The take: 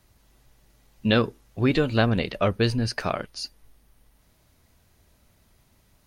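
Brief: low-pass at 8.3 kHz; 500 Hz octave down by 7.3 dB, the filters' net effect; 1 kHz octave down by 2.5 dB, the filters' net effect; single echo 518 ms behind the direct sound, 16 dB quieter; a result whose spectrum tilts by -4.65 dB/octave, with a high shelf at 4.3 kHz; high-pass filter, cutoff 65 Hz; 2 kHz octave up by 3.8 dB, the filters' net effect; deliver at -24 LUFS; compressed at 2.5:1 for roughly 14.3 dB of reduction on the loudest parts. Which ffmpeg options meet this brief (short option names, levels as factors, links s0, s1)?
-af "highpass=65,lowpass=8300,equalizer=f=500:t=o:g=-8.5,equalizer=f=1000:t=o:g=-3.5,equalizer=f=2000:t=o:g=5.5,highshelf=f=4300:g=6.5,acompressor=threshold=0.0112:ratio=2.5,aecho=1:1:518:0.158,volume=4.73"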